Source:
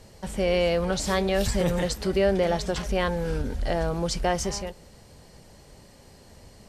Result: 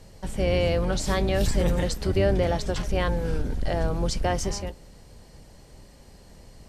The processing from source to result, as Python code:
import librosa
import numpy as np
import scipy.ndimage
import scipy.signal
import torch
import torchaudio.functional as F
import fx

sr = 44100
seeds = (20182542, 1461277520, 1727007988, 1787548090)

y = fx.octave_divider(x, sr, octaves=2, level_db=4.0)
y = y * librosa.db_to_amplitude(-1.5)